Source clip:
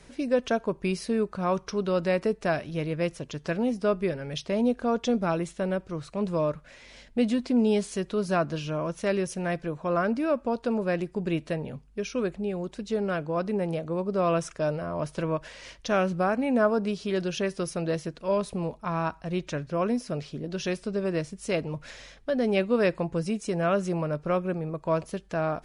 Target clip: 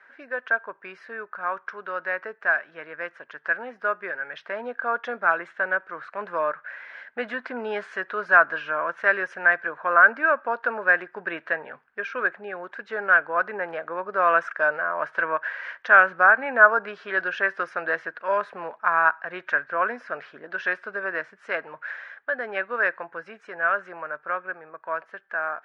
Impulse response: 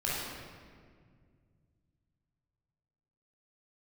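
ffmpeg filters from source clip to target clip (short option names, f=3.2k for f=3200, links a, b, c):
-af "highpass=790,dynaudnorm=f=580:g=17:m=8dB,lowpass=f=1.6k:t=q:w=6.5,volume=-2dB"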